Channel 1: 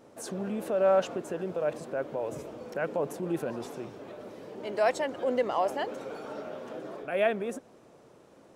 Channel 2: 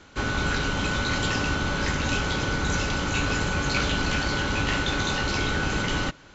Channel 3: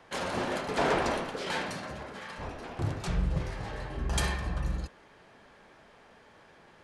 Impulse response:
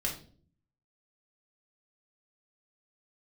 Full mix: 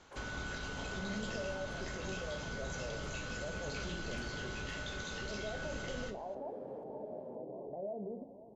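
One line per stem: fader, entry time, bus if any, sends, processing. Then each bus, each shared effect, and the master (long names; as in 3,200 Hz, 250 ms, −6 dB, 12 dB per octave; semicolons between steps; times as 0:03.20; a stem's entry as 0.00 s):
−3.5 dB, 0.65 s, bus A, send −14.5 dB, echo send −21 dB, Butterworth low-pass 960 Hz 96 dB per octave; brickwall limiter −27 dBFS, peak gain reduction 11.5 dB
−13.0 dB, 0.00 s, bus A, send −16.5 dB, no echo send, high-shelf EQ 6,000 Hz +11.5 dB
−18.5 dB, 0.00 s, no bus, no send, echo send −6.5 dB, downward compressor 6 to 1, threshold −40 dBFS, peak gain reduction 16 dB; auto-filter notch square 0.59 Hz 320–4,200 Hz; flat-topped bell 600 Hz +10.5 dB 2.7 octaves
bus A: 0.0 dB, high-shelf EQ 9,400 Hz −6.5 dB; downward compressor, threshold −43 dBFS, peak gain reduction 12 dB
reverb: on, RT60 0.50 s, pre-delay 5 ms
echo: single-tap delay 517 ms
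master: no processing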